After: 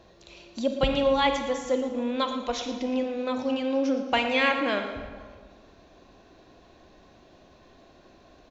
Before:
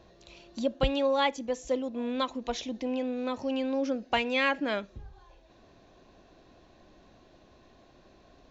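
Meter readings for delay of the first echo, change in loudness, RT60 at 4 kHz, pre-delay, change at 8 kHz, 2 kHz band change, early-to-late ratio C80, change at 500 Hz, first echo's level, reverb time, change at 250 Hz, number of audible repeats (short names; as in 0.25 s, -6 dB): 0.115 s, +3.5 dB, 1.1 s, 30 ms, n/a, +4.0 dB, 7.0 dB, +3.5 dB, -13.0 dB, 1.6 s, +3.5 dB, 1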